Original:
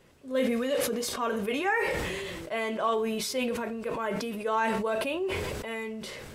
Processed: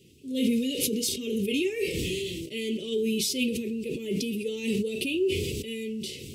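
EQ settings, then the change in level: high-pass 69 Hz; elliptic band-stop 400–2700 Hz, stop band 40 dB; +6.0 dB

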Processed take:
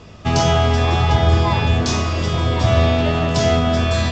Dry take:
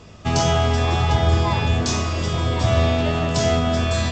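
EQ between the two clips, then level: low-pass 6.2 kHz 12 dB/octave; +3.0 dB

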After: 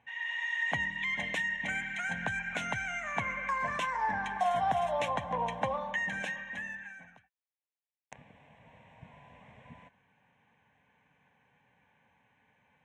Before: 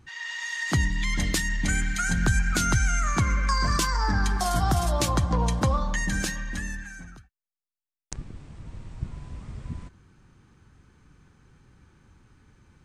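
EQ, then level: band-pass 350–3100 Hz; static phaser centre 1.3 kHz, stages 6; +1.0 dB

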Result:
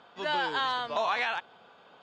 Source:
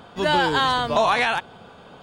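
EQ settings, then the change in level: high-pass 760 Hz 6 dB/octave; low-pass 8.2 kHz 24 dB/octave; distance through air 89 m; -6.5 dB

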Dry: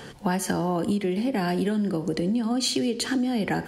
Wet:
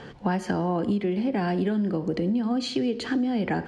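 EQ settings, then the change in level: low-pass 6.1 kHz 12 dB/octave; treble shelf 4.2 kHz -11.5 dB; 0.0 dB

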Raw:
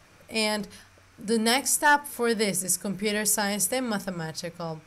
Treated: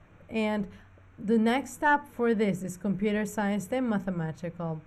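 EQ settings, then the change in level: boxcar filter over 9 samples; bass shelf 320 Hz +8.5 dB; -3.5 dB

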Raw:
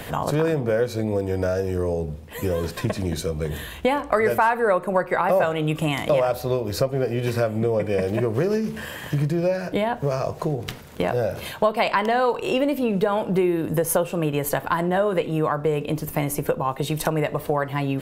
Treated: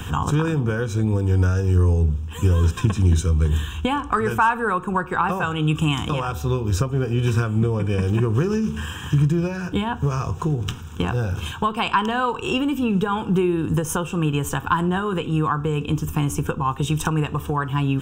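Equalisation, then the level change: peaking EQ 82 Hz +12 dB 0.56 oct; static phaser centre 3 kHz, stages 8; +4.5 dB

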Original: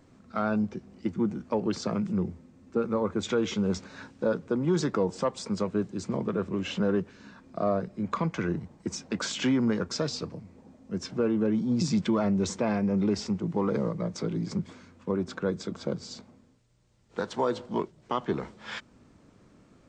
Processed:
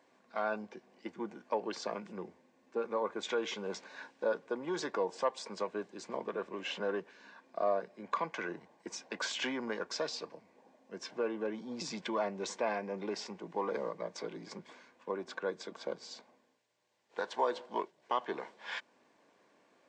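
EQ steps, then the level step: high-pass 610 Hz 12 dB/octave; Butterworth band-stop 1.3 kHz, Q 6.3; treble shelf 5.1 kHz -11 dB; 0.0 dB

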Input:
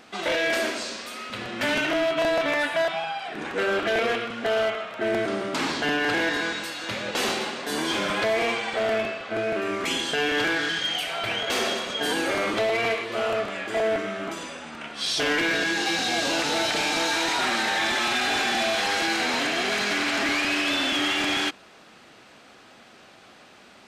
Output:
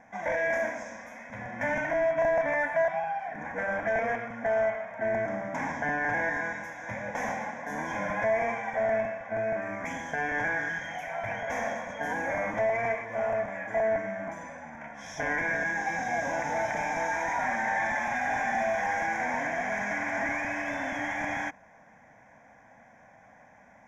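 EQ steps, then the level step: Butterworth band-stop 4.3 kHz, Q 0.6; resonant low-pass 6 kHz, resonance Q 2.6; static phaser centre 1.9 kHz, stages 8; 0.0 dB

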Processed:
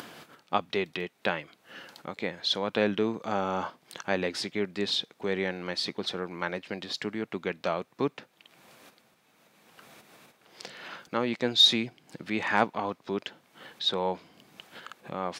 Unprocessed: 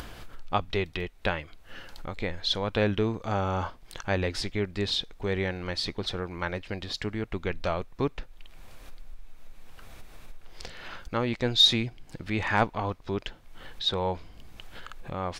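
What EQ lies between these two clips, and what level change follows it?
high-pass 160 Hz 24 dB/octave; 0.0 dB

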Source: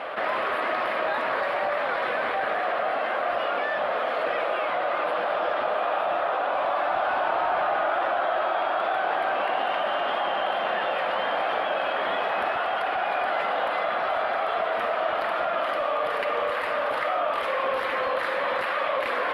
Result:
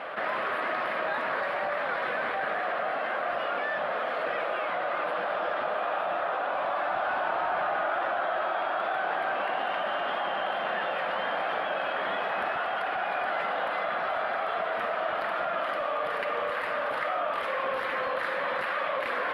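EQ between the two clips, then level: peaking EQ 170 Hz +5.5 dB 0.89 oct; peaking EQ 1.6 kHz +3.5 dB 0.77 oct; -5.0 dB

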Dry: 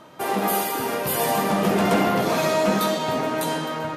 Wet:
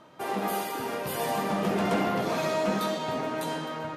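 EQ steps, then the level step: treble shelf 10 kHz -9.5 dB; -6.5 dB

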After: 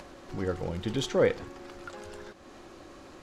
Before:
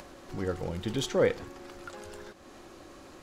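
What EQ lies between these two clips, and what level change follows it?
treble shelf 11 kHz -11.5 dB; +1.0 dB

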